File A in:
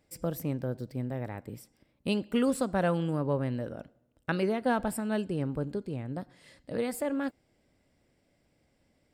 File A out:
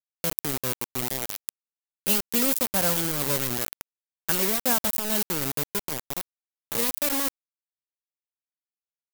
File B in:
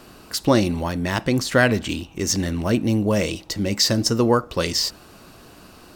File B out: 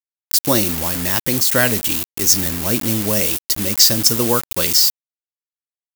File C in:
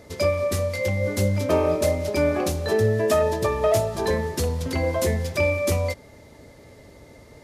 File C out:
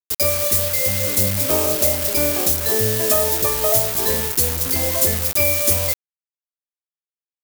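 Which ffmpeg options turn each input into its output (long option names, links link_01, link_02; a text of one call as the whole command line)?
ffmpeg -i in.wav -af "acrusher=bits=4:mix=0:aa=0.000001,aemphasis=mode=production:type=75fm,aeval=exprs='1*(abs(mod(val(0)/1+3,4)-2)-1)':channel_layout=same,volume=-1dB" out.wav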